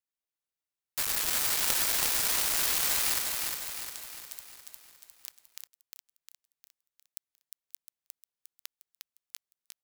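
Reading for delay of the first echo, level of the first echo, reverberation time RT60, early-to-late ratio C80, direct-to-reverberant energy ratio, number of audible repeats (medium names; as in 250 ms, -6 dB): 355 ms, -4.0 dB, no reverb, no reverb, no reverb, 6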